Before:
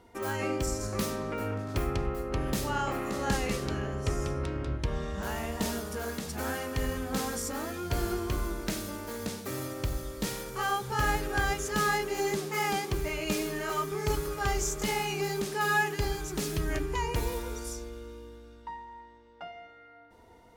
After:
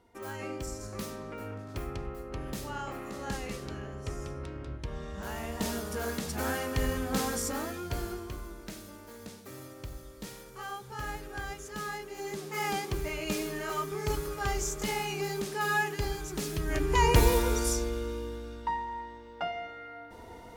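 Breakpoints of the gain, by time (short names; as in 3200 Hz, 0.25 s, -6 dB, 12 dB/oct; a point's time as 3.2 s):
4.83 s -7 dB
6.05 s +1.5 dB
7.52 s +1.5 dB
8.42 s -10 dB
12.15 s -10 dB
12.67 s -2 dB
16.64 s -2 dB
17.06 s +9 dB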